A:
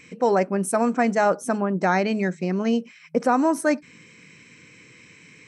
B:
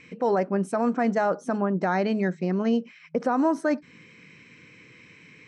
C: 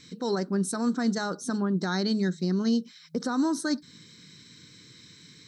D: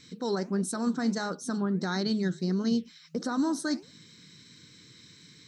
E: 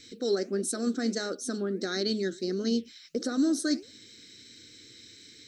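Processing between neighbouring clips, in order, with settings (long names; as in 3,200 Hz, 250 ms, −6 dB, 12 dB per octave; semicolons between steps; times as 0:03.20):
low-pass filter 4,200 Hz 12 dB per octave; dynamic equaliser 2,400 Hz, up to −6 dB, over −47 dBFS, Q 2.8; brickwall limiter −13.5 dBFS, peak gain reduction 5 dB; level −1 dB
drawn EQ curve 130 Hz 0 dB, 380 Hz −4 dB, 620 Hz −15 dB, 1,500 Hz −3 dB, 2,600 Hz −15 dB, 3,800 Hz +14 dB, 5,900 Hz +9 dB, 8,500 Hz +11 dB; level +1.5 dB
flanger 1.5 Hz, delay 1.2 ms, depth 9.4 ms, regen −86%; level +2.5 dB
phaser with its sweep stopped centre 390 Hz, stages 4; level +4 dB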